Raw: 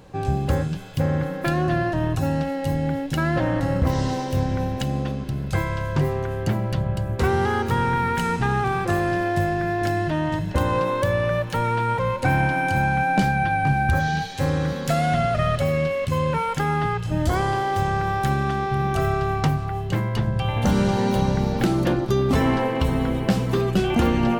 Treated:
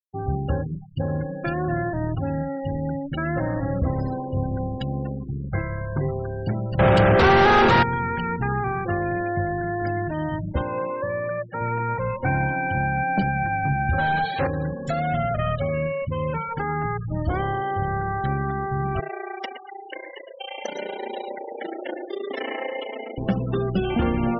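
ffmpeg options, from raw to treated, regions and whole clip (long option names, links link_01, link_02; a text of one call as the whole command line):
ffmpeg -i in.wav -filter_complex "[0:a]asettb=1/sr,asplit=3[link_01][link_02][link_03];[link_01]atrim=end=6.794[link_04];[link_02]atrim=start=6.79:end=7.83,asetpts=PTS-STARTPTS,afade=type=in:duration=0.004:curve=qsin,afade=type=out:start_time=1.036:duration=0.004:curve=qsin,acontrast=41,asplit=2[link_05][link_06];[link_06]highpass=frequency=720:poles=1,volume=36dB,asoftclip=type=tanh:threshold=-6dB[link_07];[link_05][link_07]amix=inputs=2:normalize=0,lowpass=frequency=1900:poles=1,volume=-6dB,asplit=2[link_08][link_09];[link_09]adelay=40,volume=-13.5dB[link_10];[link_08][link_10]amix=inputs=2:normalize=0,atrim=end_sample=45864[link_11];[link_03]atrim=start=7.826[link_12];[link_04][link_11]acrossfade=duration=0.004:curve1=hsin:curve2=qsin[link_13];[link_13][link_12]acrossfade=duration=0.004:curve1=qsin:curve2=hsin,asettb=1/sr,asplit=3[link_14][link_15][link_16];[link_14]atrim=end=10.614[link_17];[link_15]atrim=start=10.61:end=11.61,asetpts=PTS-STARTPTS,afade=type=in:duration=0.004:curve=qsin,afade=type=out:start_time=0.996:duration=0.004:curve=qsin,highpass=frequency=300:poles=1,equalizer=frequency=10000:width=0.41:gain=-11.5[link_18];[link_16]atrim=start=11.606[link_19];[link_17][link_18]acrossfade=duration=0.004:curve1=hsin:curve2=qsin[link_20];[link_20][link_19]acrossfade=duration=0.004:curve1=qsin:curve2=hsin,asettb=1/sr,asplit=3[link_21][link_22][link_23];[link_21]atrim=end=13.984[link_24];[link_22]atrim=start=13.98:end=14.47,asetpts=PTS-STARTPTS,afade=type=in:duration=0.004:curve=qsin,afade=type=out:start_time=0.486:duration=0.004:curve=qsin,lowpass=6900,asplit=2[link_25][link_26];[link_26]highpass=frequency=720:poles=1,volume=24dB,asoftclip=type=tanh:threshold=-10.5dB[link_27];[link_25][link_27]amix=inputs=2:normalize=0,lowpass=frequency=1400:poles=1,volume=-6dB[link_28];[link_23]atrim=start=14.466[link_29];[link_24][link_28]acrossfade=duration=0.004:curve1=hsin:curve2=qsin[link_30];[link_30][link_29]acrossfade=duration=0.004:curve1=qsin:curve2=hsin,asettb=1/sr,asplit=3[link_31][link_32][link_33];[link_31]atrim=end=19.004[link_34];[link_32]atrim=start=19:end=23.18,asetpts=PTS-STARTPTS,afade=type=in:duration=0.004:curve=qsin,afade=type=out:start_time=4.176:duration=0.004:curve=qsin,highpass=frequency=360:width=0.5412,highpass=frequency=360:width=1.3066,equalizer=frequency=570:width_type=q:width=4:gain=3,equalizer=frequency=1200:width_type=q:width=4:gain=-7,equalizer=frequency=2000:width_type=q:width=4:gain=8,equalizer=frequency=3000:width_type=q:width=4:gain=6,equalizer=frequency=5600:width_type=q:width=4:gain=5,lowpass=frequency=6200:width=0.5412,lowpass=frequency=6200:width=1.3066,tremolo=f=29:d=1,aecho=1:1:116|232|348|464|580:0.473|0.213|0.0958|0.0431|0.0194,atrim=end_sample=184338[link_35];[link_33]atrim=start=23.176[link_36];[link_34][link_35]acrossfade=duration=0.004:curve1=hsin:curve2=qsin[link_37];[link_37][link_36]acrossfade=duration=0.004:curve1=qsin:curve2=hsin,bandreject=frequency=151.9:width_type=h:width=4,bandreject=frequency=303.8:width_type=h:width=4,bandreject=frequency=455.7:width_type=h:width=4,bandreject=frequency=607.6:width_type=h:width=4,bandreject=frequency=759.5:width_type=h:width=4,bandreject=frequency=911.4:width_type=h:width=4,bandreject=frequency=1063.3:width_type=h:width=4,bandreject=frequency=1215.2:width_type=h:width=4,afftfilt=real='re*gte(hypot(re,im),0.0501)':imag='im*gte(hypot(re,im),0.0501)':win_size=1024:overlap=0.75,bandreject=frequency=1000:width=15,volume=-2.5dB" out.wav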